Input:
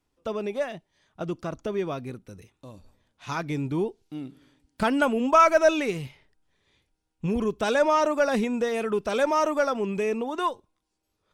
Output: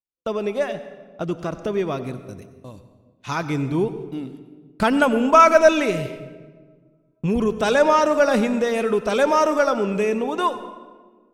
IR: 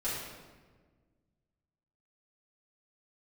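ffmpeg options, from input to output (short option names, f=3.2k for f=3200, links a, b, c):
-filter_complex "[0:a]agate=range=-36dB:threshold=-47dB:ratio=16:detection=peak,asplit=2[a][b];[1:a]atrim=start_sample=2205,adelay=88[c];[b][c]afir=irnorm=-1:irlink=0,volume=-17dB[d];[a][d]amix=inputs=2:normalize=0,volume=5dB"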